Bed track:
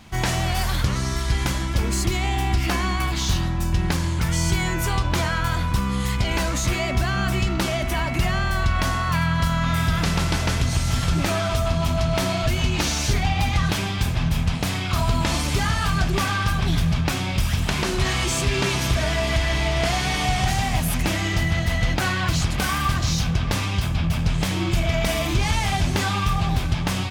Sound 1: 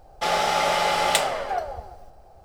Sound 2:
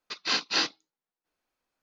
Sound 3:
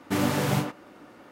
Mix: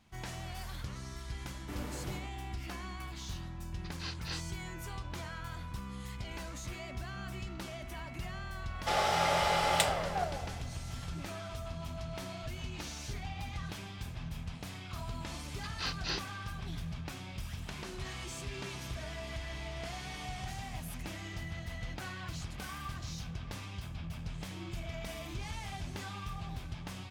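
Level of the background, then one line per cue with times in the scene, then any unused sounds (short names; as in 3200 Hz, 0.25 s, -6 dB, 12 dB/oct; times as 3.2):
bed track -19.5 dB
1.57 add 3 -18 dB
3.74 add 2 -16 dB
8.65 add 1 -7.5 dB
15.53 add 2 -11 dB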